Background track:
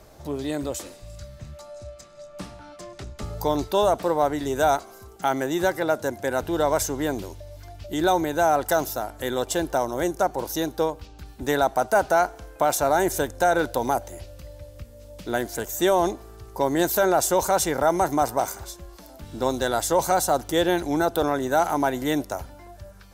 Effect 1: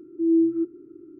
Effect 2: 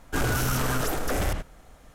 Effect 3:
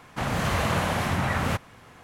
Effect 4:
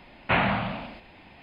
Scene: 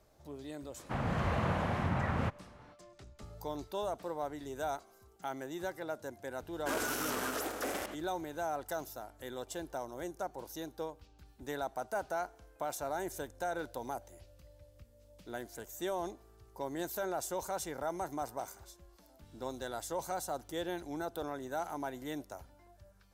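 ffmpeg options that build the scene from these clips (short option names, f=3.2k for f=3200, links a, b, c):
-filter_complex "[0:a]volume=-16.5dB[a];[3:a]lowpass=f=1.3k:p=1[b];[2:a]highpass=f=240:w=0.5412,highpass=f=240:w=1.3066[c];[b]atrim=end=2.03,asetpts=PTS-STARTPTS,volume=-6dB,afade=t=in:d=0.05,afade=t=out:st=1.98:d=0.05,adelay=730[d];[c]atrim=end=1.94,asetpts=PTS-STARTPTS,volume=-7.5dB,afade=t=in:d=0.004:c=hsin,afade=t=out:st=1.936:d=0.004:c=hsin,adelay=6530[e];[a][d][e]amix=inputs=3:normalize=0"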